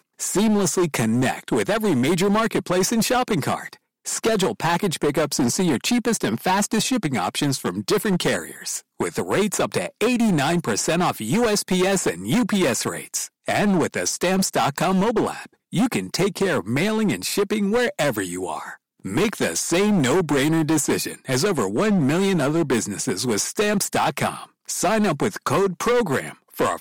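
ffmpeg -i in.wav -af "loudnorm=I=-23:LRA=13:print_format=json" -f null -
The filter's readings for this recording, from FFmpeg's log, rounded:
"input_i" : "-21.6",
"input_tp" : "-13.2",
"input_lra" : "1.8",
"input_thresh" : "-31.8",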